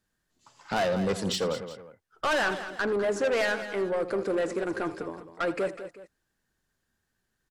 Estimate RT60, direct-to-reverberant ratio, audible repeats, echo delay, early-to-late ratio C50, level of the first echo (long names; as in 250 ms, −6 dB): no reverb audible, no reverb audible, 3, 82 ms, no reverb audible, −16.0 dB